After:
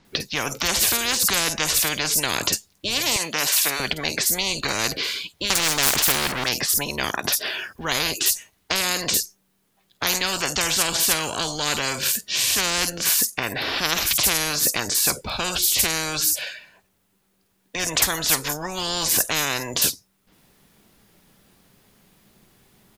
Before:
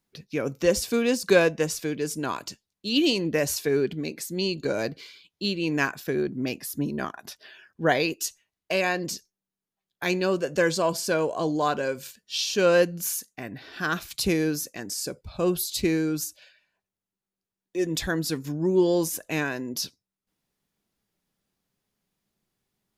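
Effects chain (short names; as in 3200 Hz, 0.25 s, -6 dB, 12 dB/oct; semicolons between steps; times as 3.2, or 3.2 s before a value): 3.16–3.8 Bessel high-pass 1100 Hz, order 2; 5.5–6.44 sample leveller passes 3; 7.17–7.84 high shelf 11000 Hz +6 dB; bands offset in time lows, highs 50 ms, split 5800 Hz; spectral compressor 10:1; gain +4 dB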